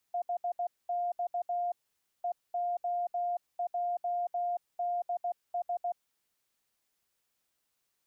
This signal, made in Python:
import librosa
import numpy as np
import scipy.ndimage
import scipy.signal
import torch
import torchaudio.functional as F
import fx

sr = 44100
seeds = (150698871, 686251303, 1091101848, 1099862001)

y = fx.morse(sr, text='HX EOJDS', wpm=16, hz=704.0, level_db=-29.0)